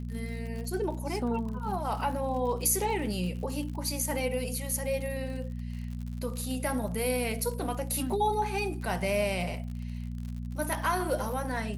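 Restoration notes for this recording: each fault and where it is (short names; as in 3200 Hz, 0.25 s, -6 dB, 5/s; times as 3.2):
crackle 66/s -38 dBFS
hum 60 Hz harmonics 4 -36 dBFS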